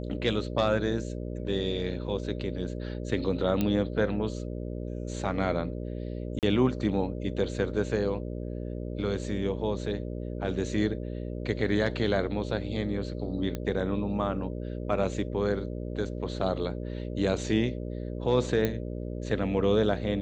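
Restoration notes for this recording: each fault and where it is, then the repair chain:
buzz 60 Hz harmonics 10 -35 dBFS
3.61 pop -14 dBFS
6.39–6.43 gap 38 ms
13.55 pop -19 dBFS
18.65 pop -14 dBFS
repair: de-click; de-hum 60 Hz, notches 10; interpolate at 6.39, 38 ms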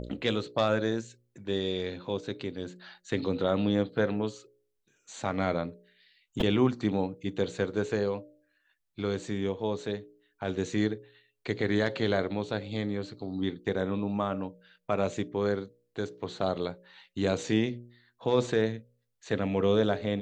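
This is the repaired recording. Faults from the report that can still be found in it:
3.61 pop

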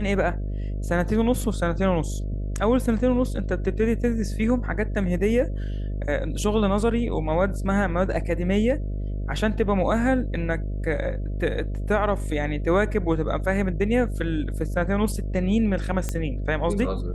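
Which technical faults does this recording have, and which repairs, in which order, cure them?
buzz 50 Hz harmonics 13 -28 dBFS
16.09 pop -13 dBFS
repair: de-click; de-hum 50 Hz, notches 13

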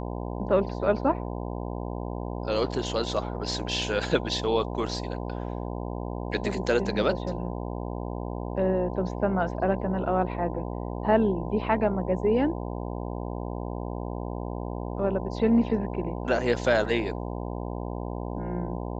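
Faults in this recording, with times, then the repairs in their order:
buzz 60 Hz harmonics 17 -33 dBFS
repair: de-hum 60 Hz, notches 17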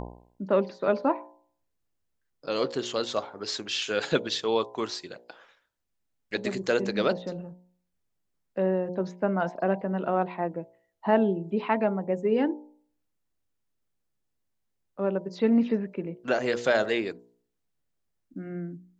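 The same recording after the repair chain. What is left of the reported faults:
none

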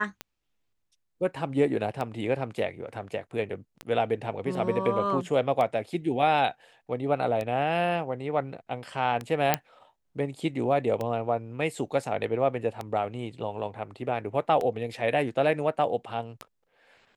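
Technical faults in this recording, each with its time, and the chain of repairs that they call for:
tick 33 1/3 rpm -18 dBFS
9.54 pop -5 dBFS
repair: de-click

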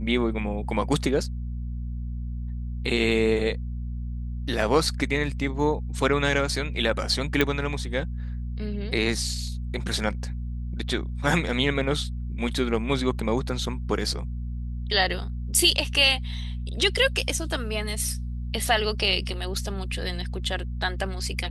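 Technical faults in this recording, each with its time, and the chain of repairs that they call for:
hum 60 Hz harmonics 4 -31 dBFS
7.41 pop -8 dBFS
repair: de-click; de-hum 60 Hz, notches 4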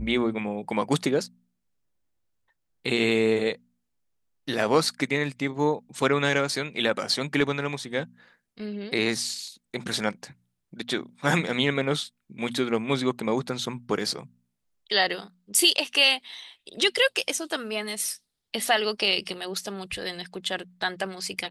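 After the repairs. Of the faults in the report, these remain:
none

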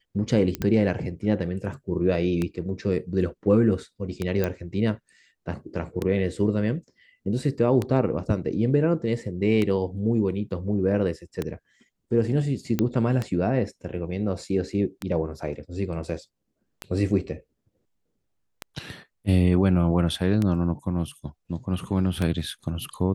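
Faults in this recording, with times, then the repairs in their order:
tick 33 1/3 rpm -13 dBFS
0.55 pop -13 dBFS
4.44 pop -12 dBFS
12.79 pop -11 dBFS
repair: de-click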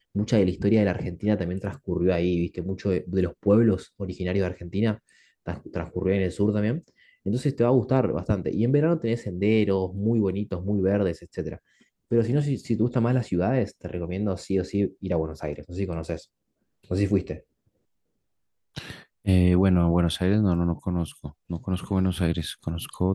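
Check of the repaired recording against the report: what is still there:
none

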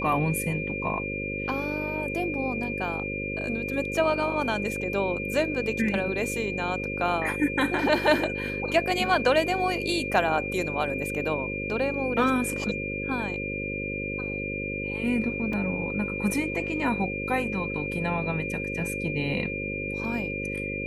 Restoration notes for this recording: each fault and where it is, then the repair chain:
buzz 50 Hz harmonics 11 -34 dBFS
tone 2400 Hz -32 dBFS
15.53 gap 3.5 ms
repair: de-hum 50 Hz, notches 11; notch 2400 Hz, Q 30; interpolate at 15.53, 3.5 ms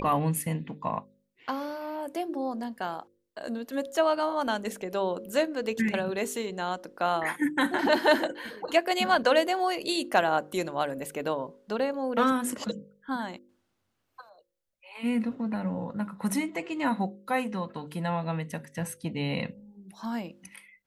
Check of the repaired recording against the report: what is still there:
none

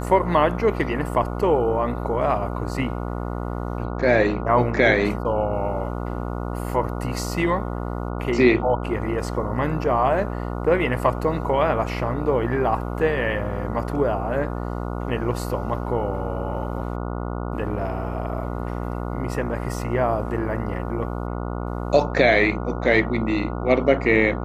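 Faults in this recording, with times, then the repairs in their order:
buzz 60 Hz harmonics 24 -28 dBFS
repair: de-hum 60 Hz, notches 24

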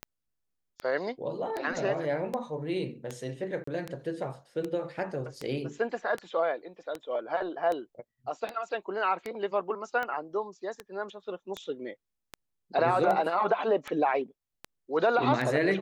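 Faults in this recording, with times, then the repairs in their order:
tick 78 rpm -20 dBFS
3.64–3.67 gap 34 ms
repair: de-click; interpolate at 3.64, 34 ms

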